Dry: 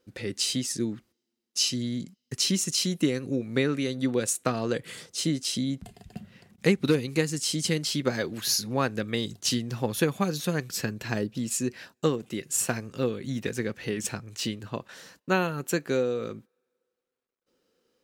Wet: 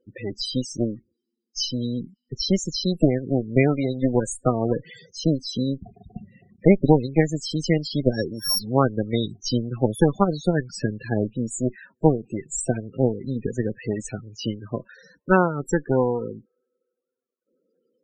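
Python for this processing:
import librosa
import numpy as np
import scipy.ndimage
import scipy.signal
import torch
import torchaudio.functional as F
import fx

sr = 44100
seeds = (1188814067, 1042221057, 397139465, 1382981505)

y = fx.sample_sort(x, sr, block=8, at=(8.12, 8.58), fade=0.02)
y = fx.cheby_harmonics(y, sr, harmonics=(4, 7), levels_db=(-9, -30), full_scale_db=-7.5)
y = fx.spec_topn(y, sr, count=16)
y = y * librosa.db_to_amplitude(5.0)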